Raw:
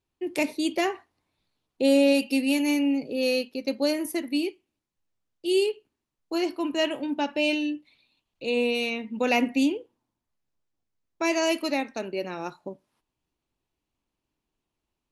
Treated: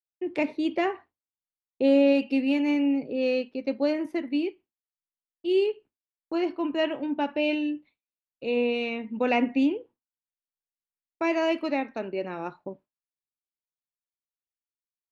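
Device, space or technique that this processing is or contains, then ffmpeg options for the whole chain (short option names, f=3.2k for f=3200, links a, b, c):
hearing-loss simulation: -af "lowpass=2.4k,agate=range=-33dB:threshold=-43dB:ratio=3:detection=peak"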